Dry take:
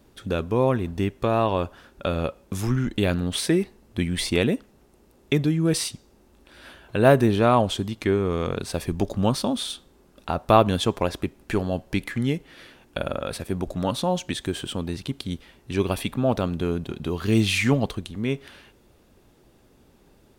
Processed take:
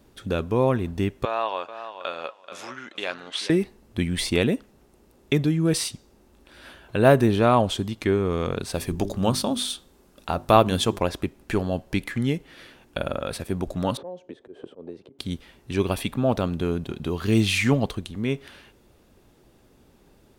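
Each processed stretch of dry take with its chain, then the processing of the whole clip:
0:01.25–0:03.50: band-pass filter 750–5,400 Hz + repeating echo 432 ms, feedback 17%, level −11 dB
0:08.75–0:10.99: high-shelf EQ 4,700 Hz +5 dB + mains-hum notches 50/100/150/200/250/300/350/400 Hz
0:13.97–0:15.19: resonant band-pass 460 Hz, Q 2.8 + volume swells 178 ms + multiband upward and downward compressor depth 100%
whole clip: no processing

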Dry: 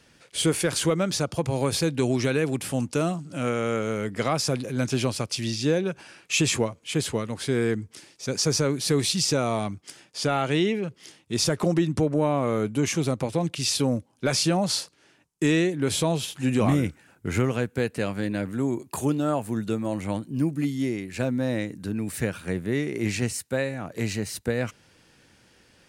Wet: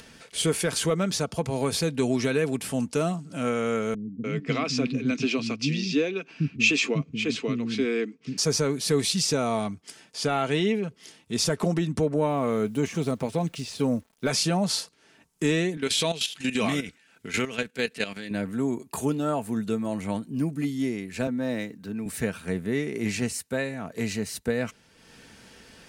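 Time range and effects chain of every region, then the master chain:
0:03.94–0:08.38: loudspeaker in its box 140–6,000 Hz, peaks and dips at 150 Hz +7 dB, 280 Hz +10 dB, 590 Hz −6 dB, 870 Hz −9 dB, 1,600 Hz −4 dB, 2,500 Hz +9 dB + multiband delay without the direct sound lows, highs 300 ms, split 250 Hz + one half of a high-frequency compander decoder only
0:12.29–0:14.29: de-essing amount 85% + bit-depth reduction 10 bits, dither none
0:15.77–0:18.31: meter weighting curve D + output level in coarse steps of 12 dB
0:21.27–0:22.06: running median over 5 samples + low-shelf EQ 170 Hz −6 dB + multiband upward and downward expander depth 40%
whole clip: comb filter 4.5 ms, depth 38%; upward compression, threshold −39 dBFS; level −1.5 dB

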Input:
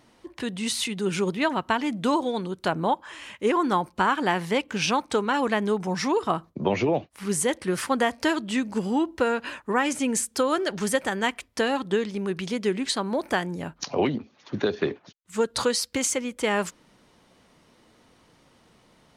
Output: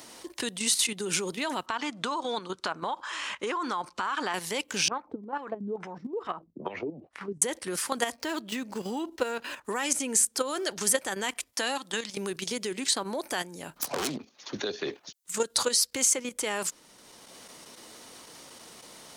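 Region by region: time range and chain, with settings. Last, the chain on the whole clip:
0:01.66–0:04.34: low-pass filter 5,400 Hz + downward compressor 4 to 1, threshold −27 dBFS + parametric band 1,200 Hz +10.5 dB 0.99 octaves
0:04.88–0:07.42: downward compressor 2 to 1, threshold −36 dBFS + auto-filter low-pass sine 2.3 Hz 200–1,900 Hz
0:08.14–0:09.65: running median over 5 samples + high-shelf EQ 3,400 Hz −10.5 dB
0:11.52–0:12.17: high-pass filter 240 Hz + parametric band 410 Hz −15 dB 0.34 octaves
0:13.76–0:14.17: phase distortion by the signal itself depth 0.53 ms + hard clipping −22.5 dBFS + multiband upward and downward compressor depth 40%
whole clip: output level in coarse steps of 10 dB; bass and treble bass −9 dB, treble +13 dB; multiband upward and downward compressor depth 40%

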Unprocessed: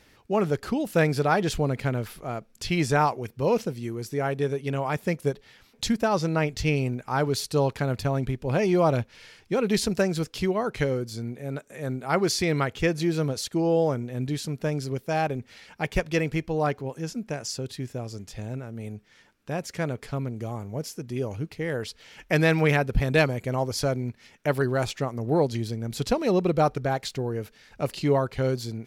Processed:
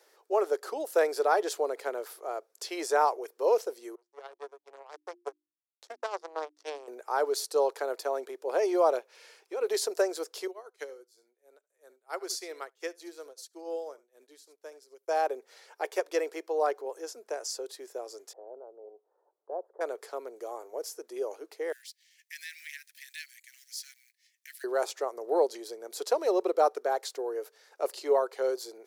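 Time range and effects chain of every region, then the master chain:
0:03.95–0:06.88: power curve on the samples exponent 3 + band-pass filter 150–6,500 Hz + mains-hum notches 50/100/150/200/250/300/350 Hz
0:08.98–0:09.61: parametric band 2,500 Hz +7 dB 0.33 octaves + downward compressor, threshold −28 dBFS
0:10.47–0:15.08: parametric band 560 Hz −8.5 dB 3 octaves + single-tap delay 72 ms −15.5 dB + expander for the loud parts 2.5 to 1, over −43 dBFS
0:18.33–0:19.81: inverse Chebyshev low-pass filter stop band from 2,300 Hz, stop band 50 dB + parametric band 180 Hz −12.5 dB 1.5 octaves
0:21.72–0:24.64: mu-law and A-law mismatch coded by A + Butterworth high-pass 1,800 Hz 72 dB per octave + downward compressor 1.5 to 1, threshold −37 dBFS
whole clip: Butterworth high-pass 380 Hz 48 dB per octave; parametric band 2,600 Hz −12 dB 1.3 octaves

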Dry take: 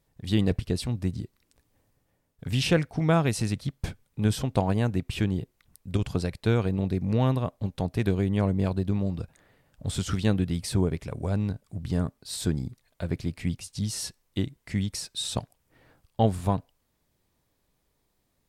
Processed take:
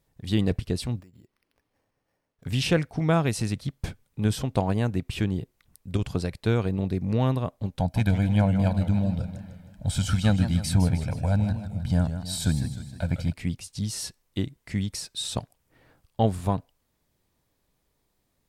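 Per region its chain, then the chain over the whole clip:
0:01.00–0:02.44: low-shelf EQ 230 Hz −12 dB + downward compressor 12 to 1, threshold −48 dBFS + bad sample-rate conversion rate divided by 6×, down filtered, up hold
0:07.79–0:13.33: comb filter 1.3 ms, depth 85% + feedback echo with a swinging delay time 156 ms, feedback 52%, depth 167 cents, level −10 dB
whole clip: no processing

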